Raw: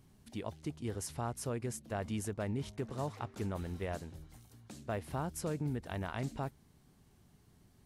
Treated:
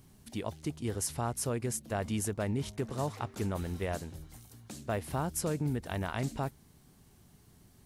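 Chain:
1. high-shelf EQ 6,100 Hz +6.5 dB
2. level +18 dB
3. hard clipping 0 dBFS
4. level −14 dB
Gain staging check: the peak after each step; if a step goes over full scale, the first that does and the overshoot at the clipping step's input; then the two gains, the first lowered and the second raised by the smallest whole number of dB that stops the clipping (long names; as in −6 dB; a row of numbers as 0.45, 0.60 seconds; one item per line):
−22.5, −4.5, −4.5, −18.5 dBFS
no step passes full scale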